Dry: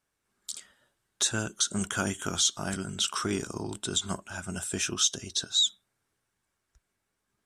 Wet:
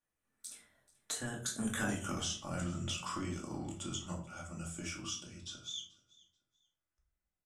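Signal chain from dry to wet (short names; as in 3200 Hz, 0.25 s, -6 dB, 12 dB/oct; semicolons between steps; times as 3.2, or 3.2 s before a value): Doppler pass-by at 1.92, 31 m/s, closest 2.9 m; bell 4400 Hz -7.5 dB 0.48 oct; compressor 6:1, threshold -54 dBFS, peak gain reduction 25 dB; feedback echo 0.434 s, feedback 24%, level -22.5 dB; shoebox room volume 380 m³, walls furnished, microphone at 2.4 m; gain +14.5 dB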